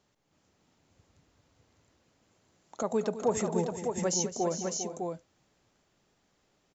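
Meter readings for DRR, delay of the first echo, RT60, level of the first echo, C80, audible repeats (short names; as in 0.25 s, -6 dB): none, 0.211 s, none, -13.0 dB, none, 4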